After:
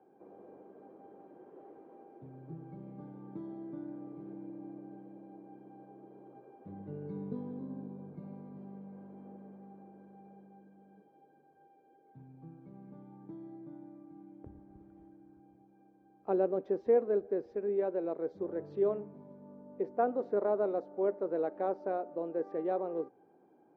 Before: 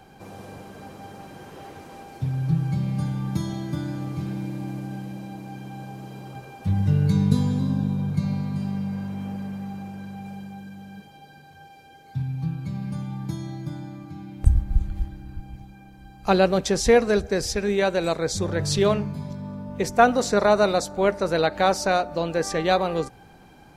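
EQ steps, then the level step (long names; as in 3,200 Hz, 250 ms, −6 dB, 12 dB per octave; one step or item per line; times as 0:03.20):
four-pole ladder band-pass 430 Hz, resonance 40%
high-frequency loss of the air 120 metres
0.0 dB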